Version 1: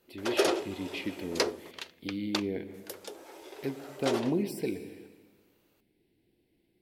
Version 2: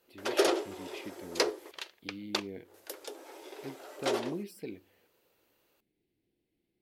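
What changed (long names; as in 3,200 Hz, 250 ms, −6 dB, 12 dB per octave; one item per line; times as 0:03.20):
speech −7.5 dB
reverb: off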